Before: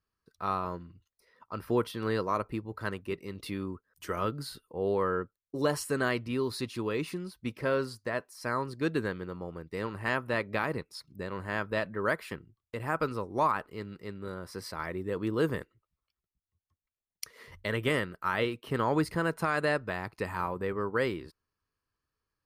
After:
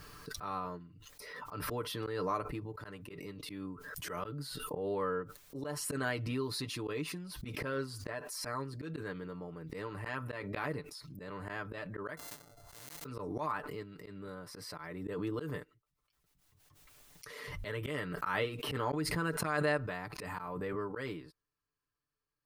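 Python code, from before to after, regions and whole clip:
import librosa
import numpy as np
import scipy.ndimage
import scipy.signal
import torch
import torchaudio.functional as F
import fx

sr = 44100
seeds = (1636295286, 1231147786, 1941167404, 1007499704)

y = fx.chain(x, sr, fx.sample_sort(block=64),
    fx.peak_eq(hz=2500.0, db=-14.0, octaves=1.0),
    fx.spectral_comp(ratio=4.0), at=(12.17, 13.05))
y = y + 0.66 * np.pad(y, (int(6.8 * sr / 1000.0), 0))[:len(y)]
y = fx.auto_swell(y, sr, attack_ms=163.0)
y = fx.pre_swell(y, sr, db_per_s=26.0)
y = y * 10.0 ** (-7.0 / 20.0)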